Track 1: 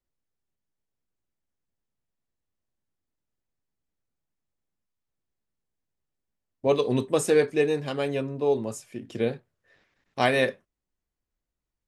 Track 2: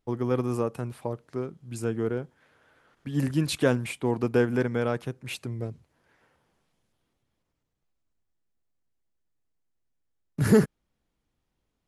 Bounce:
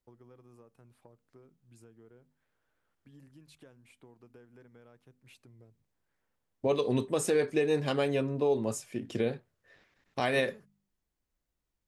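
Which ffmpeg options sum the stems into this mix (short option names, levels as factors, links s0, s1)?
-filter_complex "[0:a]alimiter=limit=0.112:level=0:latency=1:release=210,volume=1.12[s0];[1:a]bandreject=f=50:t=h:w=6,bandreject=f=100:t=h:w=6,bandreject=f=150:t=h:w=6,bandreject=f=200:t=h:w=6,bandreject=f=250:t=h:w=6,acompressor=threshold=0.02:ratio=6,volume=0.106[s1];[s0][s1]amix=inputs=2:normalize=0"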